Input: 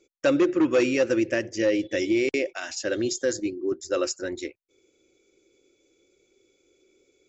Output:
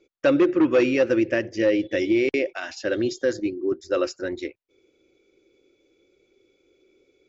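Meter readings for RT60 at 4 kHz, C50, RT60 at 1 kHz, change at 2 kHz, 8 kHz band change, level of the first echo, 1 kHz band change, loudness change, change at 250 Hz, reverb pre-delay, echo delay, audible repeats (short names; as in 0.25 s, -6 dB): none, none, none, +1.5 dB, n/a, none, +2.0 dB, +2.0 dB, +2.5 dB, none, none, none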